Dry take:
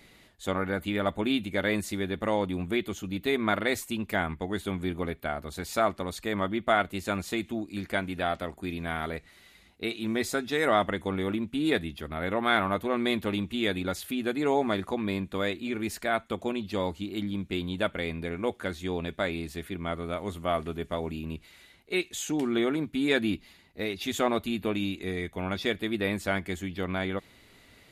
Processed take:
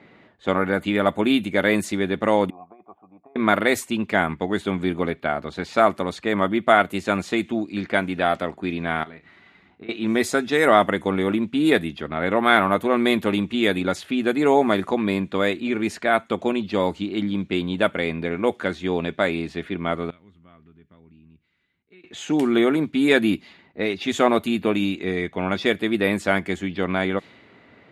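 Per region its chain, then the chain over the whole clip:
0:02.50–0:03.36: low-shelf EQ 210 Hz −4 dB + compressor whose output falls as the input rises −30 dBFS, ratio −0.5 + formant resonators in series a
0:09.03–0:09.89: parametric band 520 Hz −8.5 dB 0.46 octaves + downward compressor 16 to 1, threshold −44 dBFS + double-tracking delay 32 ms −9 dB
0:20.10–0:22.04: guitar amp tone stack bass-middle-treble 6-0-2 + downward compressor 2 to 1, threshold −56 dBFS
whole clip: low-pass that shuts in the quiet parts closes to 1,600 Hz, open at −23.5 dBFS; high-pass filter 140 Hz 12 dB per octave; dynamic equaliser 4,300 Hz, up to −4 dB, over −47 dBFS, Q 1.2; level +8.5 dB

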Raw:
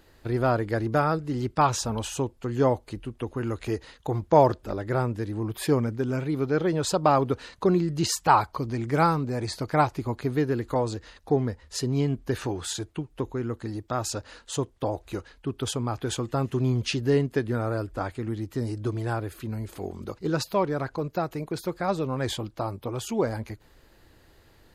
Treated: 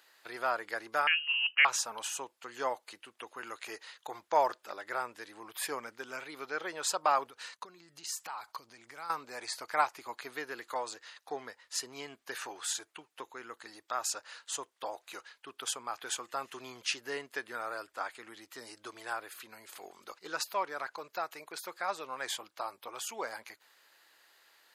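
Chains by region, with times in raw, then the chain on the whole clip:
0:01.07–0:01.65: voice inversion scrambler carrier 3,000 Hz + linear-phase brick-wall high-pass 160 Hz + dynamic equaliser 1,900 Hz, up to −4 dB, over −35 dBFS, Q 5.8
0:07.26–0:09.10: downward expander −49 dBFS + bass and treble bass +8 dB, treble +4 dB + downward compressor 16 to 1, threshold −31 dBFS
whole clip: high-pass filter 1,100 Hz 12 dB per octave; dynamic equaliser 3,800 Hz, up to −5 dB, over −47 dBFS, Q 1.4

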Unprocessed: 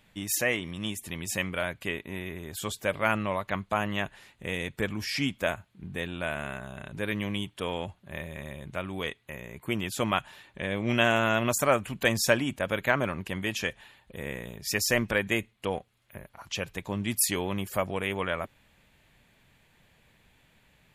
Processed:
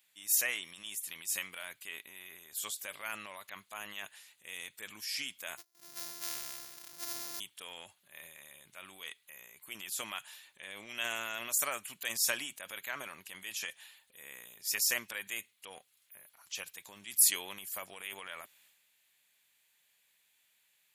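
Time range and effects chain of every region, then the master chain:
0:05.57–0:07.40: samples sorted by size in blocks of 128 samples + comb filter 6 ms, depth 50% + noise gate −50 dBFS, range −6 dB
whole clip: first difference; transient designer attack −2 dB, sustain +7 dB

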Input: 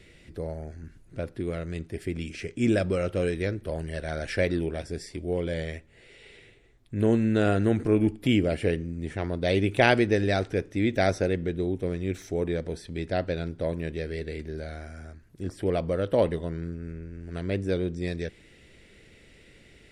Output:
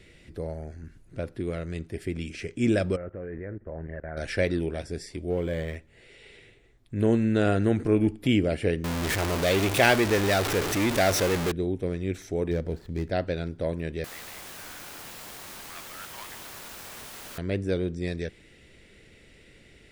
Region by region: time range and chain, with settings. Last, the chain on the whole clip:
0:02.96–0:04.17: Chebyshev low-pass filter 1,900 Hz, order 4 + output level in coarse steps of 18 dB
0:05.30–0:05.76: converter with a step at zero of −43.5 dBFS + high-shelf EQ 5,900 Hz −6.5 dB + linearly interpolated sample-rate reduction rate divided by 4×
0:08.84–0:11.52: converter with a step at zero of −20 dBFS + low-shelf EQ 490 Hz −6.5 dB
0:12.51–0:13.10: running median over 15 samples + low-shelf EQ 150 Hz +6 dB
0:14.04–0:17.38: Butterworth high-pass 1,100 Hz + bit-depth reduction 6 bits, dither triangular + high-shelf EQ 2,800 Hz −9 dB
whole clip: no processing

